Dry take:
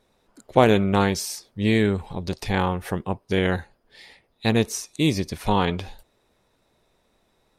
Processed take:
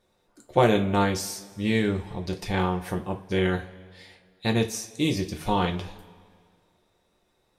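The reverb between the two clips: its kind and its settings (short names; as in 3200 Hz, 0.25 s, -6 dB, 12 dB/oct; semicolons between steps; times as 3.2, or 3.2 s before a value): two-slope reverb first 0.24 s, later 2 s, from -22 dB, DRR 2.5 dB; gain -5 dB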